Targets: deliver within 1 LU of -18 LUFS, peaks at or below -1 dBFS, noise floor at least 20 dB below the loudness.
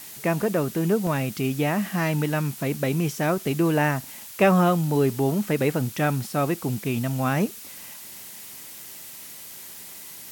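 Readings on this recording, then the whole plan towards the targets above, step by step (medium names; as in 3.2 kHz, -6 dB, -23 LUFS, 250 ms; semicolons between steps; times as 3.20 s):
dropouts 1; longest dropout 1.4 ms; noise floor -41 dBFS; noise floor target -44 dBFS; loudness -24.0 LUFS; peak level -5.0 dBFS; loudness target -18.0 LUFS
-> interpolate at 1.07 s, 1.4 ms; noise reduction 6 dB, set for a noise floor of -41 dBFS; trim +6 dB; peak limiter -1 dBFS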